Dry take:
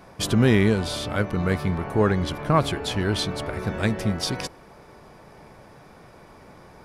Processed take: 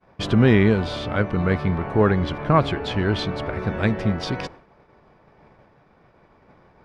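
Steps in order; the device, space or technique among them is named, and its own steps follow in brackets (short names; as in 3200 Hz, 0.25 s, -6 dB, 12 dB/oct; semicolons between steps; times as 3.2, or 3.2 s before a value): hearing-loss simulation (LPF 3200 Hz 12 dB/oct; expander -40 dBFS); gain +2.5 dB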